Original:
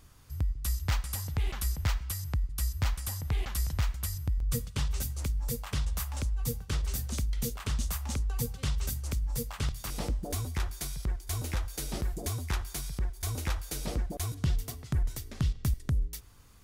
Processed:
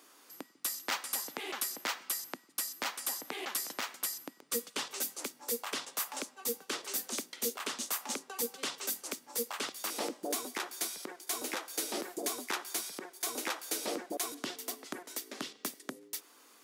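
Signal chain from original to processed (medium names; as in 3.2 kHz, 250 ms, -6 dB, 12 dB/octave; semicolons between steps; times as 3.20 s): steep high-pass 270 Hz 36 dB/octave; in parallel at -11.5 dB: saturation -31.5 dBFS, distortion -15 dB; on the sum: trim +1.5 dB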